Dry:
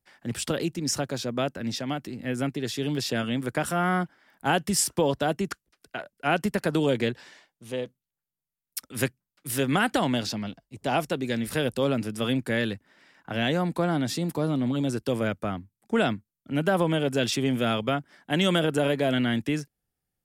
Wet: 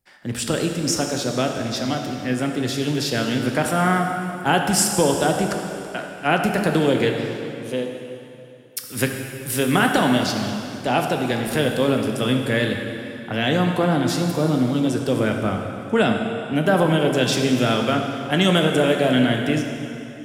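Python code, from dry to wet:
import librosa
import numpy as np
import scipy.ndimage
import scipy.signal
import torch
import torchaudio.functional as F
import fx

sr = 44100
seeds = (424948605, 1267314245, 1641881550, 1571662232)

y = fx.rev_plate(x, sr, seeds[0], rt60_s=2.9, hf_ratio=0.85, predelay_ms=0, drr_db=2.5)
y = y * librosa.db_to_amplitude(4.5)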